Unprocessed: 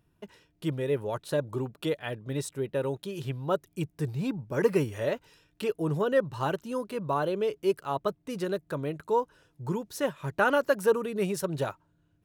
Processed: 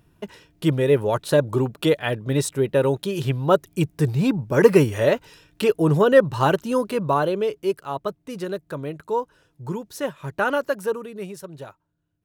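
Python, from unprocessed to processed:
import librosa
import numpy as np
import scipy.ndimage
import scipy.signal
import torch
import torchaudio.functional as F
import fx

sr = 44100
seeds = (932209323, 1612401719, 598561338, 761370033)

y = fx.gain(x, sr, db=fx.line((6.86, 10.5), (7.79, 2.0), (10.57, 2.0), (11.53, -7.5)))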